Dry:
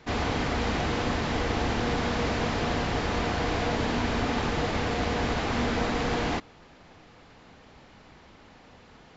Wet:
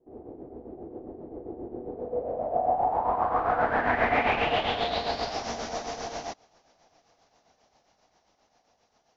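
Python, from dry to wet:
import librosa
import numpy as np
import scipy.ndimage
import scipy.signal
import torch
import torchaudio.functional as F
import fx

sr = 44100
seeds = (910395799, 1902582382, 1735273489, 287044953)

y = fx.doppler_pass(x, sr, speed_mps=10, closest_m=5.7, pass_at_s=4.19)
y = fx.peak_eq(y, sr, hz=700.0, db=12.5, octaves=0.81)
y = fx.tremolo_shape(y, sr, shape='triangle', hz=7.5, depth_pct=65)
y = fx.bass_treble(y, sr, bass_db=-4, treble_db=5)
y = fx.filter_sweep_lowpass(y, sr, from_hz=370.0, to_hz=5900.0, start_s=1.82, end_s=5.5, q=4.9)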